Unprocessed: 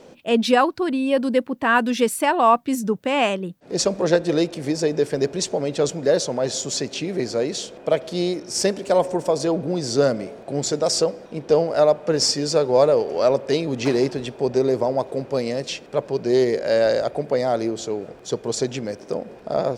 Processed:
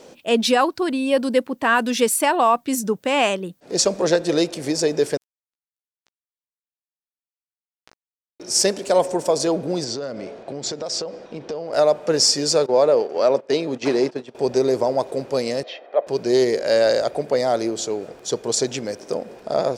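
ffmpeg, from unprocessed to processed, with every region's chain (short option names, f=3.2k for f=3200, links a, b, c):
-filter_complex "[0:a]asettb=1/sr,asplit=3[a][b][c];[a]atrim=end=5.174[d];[b]atrim=start=5.17:end=8.4,asetpts=PTS-STARTPTS,afade=t=in:d=0.004:c=qsin,afade=t=out:st=3.226:d=0.004:c=qsin,acompressor=threshold=-31dB:ratio=3:attack=3.2:release=140:knee=1:detection=peak,acrusher=bits=2:mix=0:aa=0.5,asplit=2[e][f];[f]adelay=16,volume=-6.5dB[g];[e][g]amix=inputs=2:normalize=0,atrim=end_sample=142443[h];[c]atrim=start=8.396[i];[d][h]acrossfade=d=0.004:c1=hsin:c2=qsin[j];[j][i]acrossfade=d=0.004:c1=qsin:c2=hsin,asettb=1/sr,asplit=3[k][l][m];[k]atrim=end=9.844[n];[l]atrim=start=9.84:end=11.73,asetpts=PTS-STARTPTS,afade=t=in:d=0.004:c=qsin,afade=t=out:st=1.886:d=0.004:c=qsin,lowpass=4.7k,acompressor=threshold=-26dB:ratio=8:attack=3.2:release=140:knee=1:detection=peak[o];[m]atrim=start=11.726[p];[n][o]acrossfade=d=0.004:c1=hsin:c2=qsin[q];[q][p]acrossfade=d=0.004:c1=qsin:c2=hsin,asettb=1/sr,asplit=3[r][s][t];[r]atrim=end=12.664[u];[s]atrim=start=12.66:end=14.35,asetpts=PTS-STARTPTS,afade=t=in:d=0.004:c=qsin,afade=t=out:st=1.686:d=0.004:c=qsin,agate=range=-15dB:threshold=-28dB:ratio=16:release=100:detection=peak,highpass=160,aemphasis=mode=reproduction:type=50kf[v];[t]atrim=start=14.346[w];[u][v]acrossfade=d=0.004:c1=hsin:c2=qsin[x];[x][w]acrossfade=d=0.004:c1=qsin:c2=hsin,asettb=1/sr,asplit=3[y][z][aa];[y]atrim=end=15.634[ab];[z]atrim=start=15.63:end=16.07,asetpts=PTS-STARTPTS,afade=t=in:d=0.004:c=qsin,afade=t=out:st=0.436:d=0.004:c=qsin,highpass=f=340:w=0.5412,highpass=f=340:w=1.3066,equalizer=f=440:t=q:w=4:g=-5,equalizer=f=700:t=q:w=4:g=5,equalizer=f=1.3k:t=q:w=4:g=-6,equalizer=f=2.6k:t=q:w=4:g=-8,lowpass=f=2.8k:w=0.5412,lowpass=f=2.8k:w=1.3066,aecho=1:1:1.6:0.42,atrim=end_sample=19404[ac];[aa]atrim=start=16.066[ad];[ab][ac]acrossfade=d=0.004:c1=hsin:c2=qsin[ae];[ae][ad]acrossfade=d=0.004:c1=qsin:c2=hsin,bass=f=250:g=-5,treble=f=4k:g=6,alimiter=level_in=7.5dB:limit=-1dB:release=50:level=0:latency=1,volume=-6dB"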